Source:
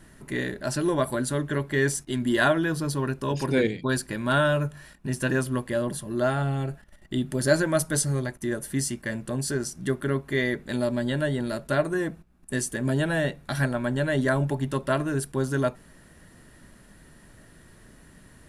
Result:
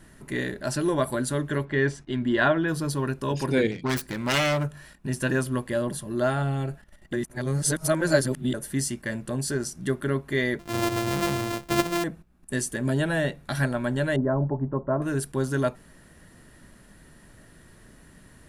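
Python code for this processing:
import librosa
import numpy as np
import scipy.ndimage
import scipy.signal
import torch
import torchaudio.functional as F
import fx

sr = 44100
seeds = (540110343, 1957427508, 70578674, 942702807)

y = fx.lowpass(x, sr, hz=3300.0, slope=12, at=(1.64, 2.67), fade=0.02)
y = fx.self_delay(y, sr, depth_ms=0.37, at=(3.71, 4.69))
y = fx.sample_sort(y, sr, block=128, at=(10.59, 12.04))
y = fx.lowpass(y, sr, hz=1100.0, slope=24, at=(14.16, 15.02))
y = fx.edit(y, sr, fx.reverse_span(start_s=7.13, length_s=1.41), tone=tone)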